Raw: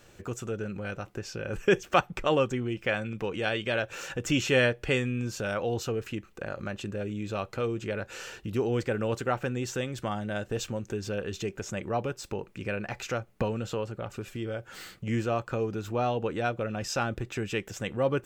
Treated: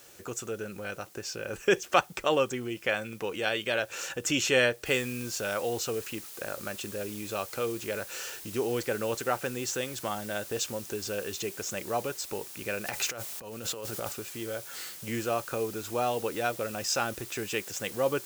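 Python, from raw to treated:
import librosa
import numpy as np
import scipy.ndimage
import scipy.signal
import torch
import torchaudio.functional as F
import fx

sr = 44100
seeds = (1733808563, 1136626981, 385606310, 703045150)

y = fx.noise_floor_step(x, sr, seeds[0], at_s=4.86, before_db=-63, after_db=-51, tilt_db=0.0)
y = fx.over_compress(y, sr, threshold_db=-37.0, ratio=-1.0, at=(12.85, 14.12), fade=0.02)
y = scipy.signal.sosfilt(scipy.signal.butter(2, 43.0, 'highpass', fs=sr, output='sos'), y)
y = fx.bass_treble(y, sr, bass_db=-9, treble_db=7)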